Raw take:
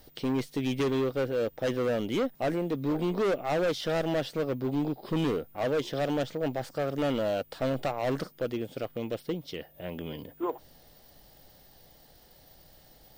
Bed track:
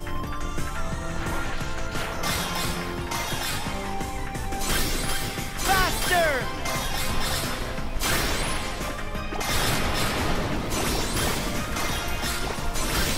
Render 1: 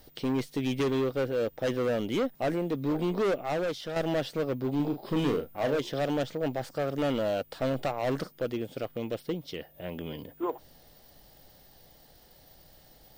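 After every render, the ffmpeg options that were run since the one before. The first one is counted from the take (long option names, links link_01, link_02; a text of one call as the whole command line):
ffmpeg -i in.wav -filter_complex "[0:a]asettb=1/sr,asplit=3[link_01][link_02][link_03];[link_01]atrim=end=4.764[link_04];[link_02]atrim=start=4.76:end=5.79,asetpts=PTS-STARTPTS,afade=type=in:duration=0.004:curve=qsin,afade=type=out:start_time=1.026:duration=0.004:curve=qsin,asplit=2[link_05][link_06];[link_06]adelay=35,volume=-7dB[link_07];[link_05][link_07]amix=inputs=2:normalize=0,atrim=end_sample=45423[link_08];[link_03]atrim=start=5.786[link_09];[link_04][link_08]acrossfade=duration=0.004:curve1=hsin:curve2=qsin[link_10];[link_10][link_09]acrossfade=duration=0.004:curve1=qsin:curve2=hsin,asplit=2[link_11][link_12];[link_11]atrim=end=3.96,asetpts=PTS-STARTPTS,afade=type=out:start_time=3.29:duration=0.67:silence=0.421697[link_13];[link_12]atrim=start=3.96,asetpts=PTS-STARTPTS,afade=type=in:duration=0.004:curve=hsin:silence=0.421697[link_14];[link_13][link_14]concat=n=2:v=0:a=1" out.wav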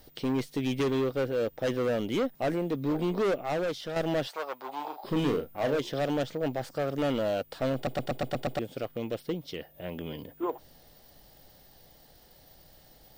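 ffmpeg -i in.wav -filter_complex "[0:a]asettb=1/sr,asplit=3[link_01][link_02][link_03];[link_01]atrim=end=4.274[link_04];[link_02]atrim=start=4.27:end=5.04,asetpts=PTS-STARTPTS,afade=type=in:duration=0.004:curve=qsin,afade=type=out:start_time=0.766:duration=0.004:curve=qsin,highpass=frequency=880:width_type=q:width=2.9[link_05];[link_03]atrim=start=5.036[link_06];[link_04][link_05]acrossfade=duration=0.004:curve1=hsin:curve2=qsin[link_07];[link_07][link_06]acrossfade=duration=0.004:curve1=qsin:curve2=hsin,asplit=8[link_08][link_09][link_10][link_11][link_12][link_13][link_14][link_15];[link_08]atrim=end=7.872[link_16];[link_09]atrim=start=7.748:end=7.872[link_17];[link_10]atrim=start=7.748:end=7.872[link_18];[link_11]atrim=start=7.748:end=7.872[link_19];[link_12]atrim=start=7.748:end=7.872[link_20];[link_13]atrim=start=7.748:end=7.872[link_21];[link_14]atrim=start=7.748:end=7.872[link_22];[link_15]atrim=start=8.588[link_23];[link_16][link_17]acrossfade=duration=0.004:curve1=hsin:curve2=hsin[link_24];[link_24][link_18]acrossfade=duration=0.004:curve1=hsin:curve2=hsin[link_25];[link_25][link_19]acrossfade=duration=0.004:curve1=hsin:curve2=hsin[link_26];[link_26][link_20]acrossfade=duration=0.004:curve1=hsin:curve2=hsin[link_27];[link_27][link_21]acrossfade=duration=0.004:curve1=hsin:curve2=hsin[link_28];[link_28][link_22]acrossfade=duration=0.004:curve1=hsin:curve2=hsin[link_29];[link_29][link_23]acrossfade=duration=0.004:curve1=hsin:curve2=hsin" out.wav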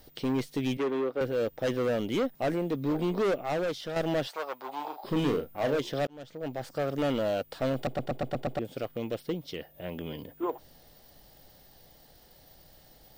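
ffmpeg -i in.wav -filter_complex "[0:a]asettb=1/sr,asplit=3[link_01][link_02][link_03];[link_01]atrim=end=0.774[link_04];[link_02]atrim=start=0.77:end=1.21,asetpts=PTS-STARTPTS,afade=type=in:duration=0.004:curve=qsin,afade=type=out:start_time=0.436:duration=0.004:curve=qsin,acrossover=split=240 2400:gain=0.1 1 0.224[link_05][link_06][link_07];[link_05][link_06][link_07]amix=inputs=3:normalize=0[link_08];[link_03]atrim=start=1.206[link_09];[link_04][link_08]acrossfade=duration=0.004:curve1=hsin:curve2=qsin[link_10];[link_10][link_09]acrossfade=duration=0.004:curve1=qsin:curve2=hsin,asettb=1/sr,asplit=3[link_11][link_12][link_13];[link_11]atrim=end=7.874[link_14];[link_12]atrim=start=7.87:end=8.65,asetpts=PTS-STARTPTS,afade=type=in:duration=0.004:curve=qsin,afade=type=out:start_time=0.776:duration=0.004:curve=qsin,highshelf=frequency=2200:gain=-8[link_15];[link_13]atrim=start=8.646[link_16];[link_14][link_15]acrossfade=duration=0.004:curve1=hsin:curve2=qsin[link_17];[link_17][link_16]acrossfade=duration=0.004:curve1=qsin:curve2=hsin,asplit=2[link_18][link_19];[link_18]atrim=end=6.07,asetpts=PTS-STARTPTS,afade=type=out:start_time=6.066:duration=0.004:curve=hsin[link_20];[link_19]atrim=start=6.07,asetpts=PTS-STARTPTS,afade=type=in:duration=0.72[link_21];[link_20][link_21]concat=n=2:v=0:a=1" out.wav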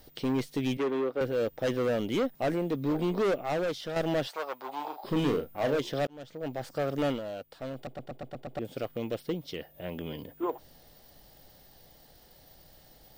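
ffmpeg -i in.wav -filter_complex "[0:a]asplit=3[link_01][link_02][link_03];[link_01]atrim=end=7.21,asetpts=PTS-STARTPTS,afade=type=out:start_time=7.08:duration=0.13:silence=0.354813[link_04];[link_02]atrim=start=7.21:end=8.52,asetpts=PTS-STARTPTS,volume=-9dB[link_05];[link_03]atrim=start=8.52,asetpts=PTS-STARTPTS,afade=type=in:duration=0.13:silence=0.354813[link_06];[link_04][link_05][link_06]concat=n=3:v=0:a=1" out.wav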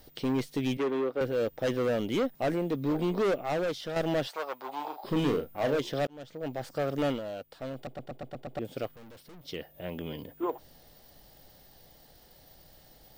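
ffmpeg -i in.wav -filter_complex "[0:a]asettb=1/sr,asplit=3[link_01][link_02][link_03];[link_01]atrim=end=8.954[link_04];[link_02]atrim=start=8.95:end=9.45,asetpts=PTS-STARTPTS,afade=type=in:duration=0.004:curve=qsin,afade=type=out:start_time=0.496:duration=0.004:curve=qsin,aeval=exprs='(tanh(282*val(0)+0.45)-tanh(0.45))/282':channel_layout=same[link_05];[link_03]atrim=start=9.446[link_06];[link_04][link_05]acrossfade=duration=0.004:curve1=hsin:curve2=qsin[link_07];[link_07][link_06]acrossfade=duration=0.004:curve1=qsin:curve2=hsin" out.wav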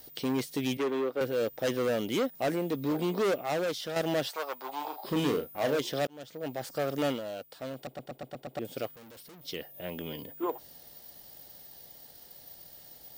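ffmpeg -i in.wav -af "highpass=frequency=130:poles=1,aemphasis=mode=production:type=cd" out.wav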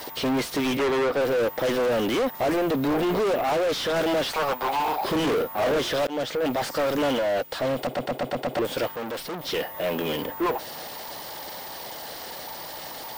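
ffmpeg -i in.wav -filter_complex "[0:a]asplit=2[link_01][link_02];[link_02]highpass=frequency=720:poles=1,volume=36dB,asoftclip=type=tanh:threshold=-16dB[link_03];[link_01][link_03]amix=inputs=2:normalize=0,lowpass=frequency=1900:poles=1,volume=-6dB" out.wav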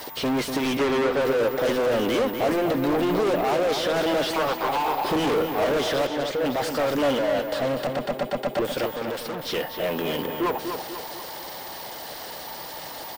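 ffmpeg -i in.wav -filter_complex "[0:a]asplit=2[link_01][link_02];[link_02]adelay=245,lowpass=frequency=3900:poles=1,volume=-6.5dB,asplit=2[link_03][link_04];[link_04]adelay=245,lowpass=frequency=3900:poles=1,volume=0.49,asplit=2[link_05][link_06];[link_06]adelay=245,lowpass=frequency=3900:poles=1,volume=0.49,asplit=2[link_07][link_08];[link_08]adelay=245,lowpass=frequency=3900:poles=1,volume=0.49,asplit=2[link_09][link_10];[link_10]adelay=245,lowpass=frequency=3900:poles=1,volume=0.49,asplit=2[link_11][link_12];[link_12]adelay=245,lowpass=frequency=3900:poles=1,volume=0.49[link_13];[link_01][link_03][link_05][link_07][link_09][link_11][link_13]amix=inputs=7:normalize=0" out.wav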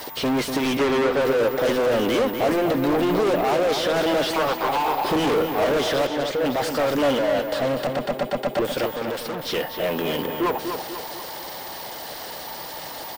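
ffmpeg -i in.wav -af "volume=2dB" out.wav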